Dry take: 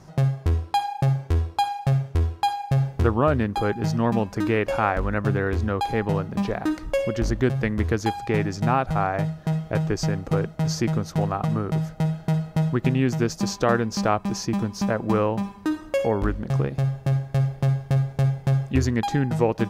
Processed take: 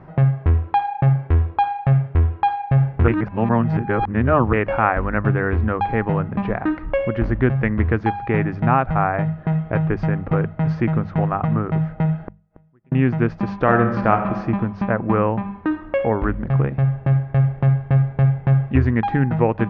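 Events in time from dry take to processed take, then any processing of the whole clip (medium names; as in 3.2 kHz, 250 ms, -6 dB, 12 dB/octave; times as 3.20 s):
3.08–4.53 s: reverse
12.19–12.92 s: inverted gate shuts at -28 dBFS, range -40 dB
13.62–14.38 s: reverb throw, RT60 1.1 s, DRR 5.5 dB
14.89–15.52 s: low-pass 3.8 kHz
whole clip: low-pass 2.3 kHz 24 dB/octave; hum notches 50/100/150/200 Hz; dynamic bell 440 Hz, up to -4 dB, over -36 dBFS, Q 0.9; trim +6 dB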